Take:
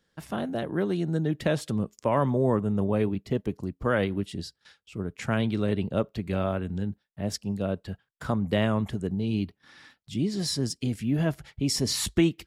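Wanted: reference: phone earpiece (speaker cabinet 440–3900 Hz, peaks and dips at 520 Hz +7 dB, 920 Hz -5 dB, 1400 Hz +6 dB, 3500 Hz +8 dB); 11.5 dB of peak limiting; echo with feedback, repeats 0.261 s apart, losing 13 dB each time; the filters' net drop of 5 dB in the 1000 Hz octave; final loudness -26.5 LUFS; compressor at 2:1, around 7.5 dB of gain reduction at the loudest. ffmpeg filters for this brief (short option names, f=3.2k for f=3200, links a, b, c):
-af "equalizer=f=1k:t=o:g=-8,acompressor=threshold=-31dB:ratio=2,alimiter=level_in=4dB:limit=-24dB:level=0:latency=1,volume=-4dB,highpass=440,equalizer=f=520:t=q:w=4:g=7,equalizer=f=920:t=q:w=4:g=-5,equalizer=f=1.4k:t=q:w=4:g=6,equalizer=f=3.5k:t=q:w=4:g=8,lowpass=f=3.9k:w=0.5412,lowpass=f=3.9k:w=1.3066,aecho=1:1:261|522|783:0.224|0.0493|0.0108,volume=16.5dB"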